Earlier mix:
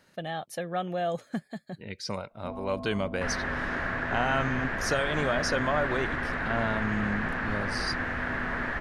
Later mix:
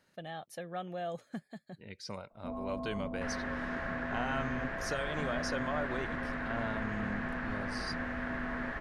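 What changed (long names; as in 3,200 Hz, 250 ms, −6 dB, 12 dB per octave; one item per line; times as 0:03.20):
speech −8.5 dB
second sound −8.0 dB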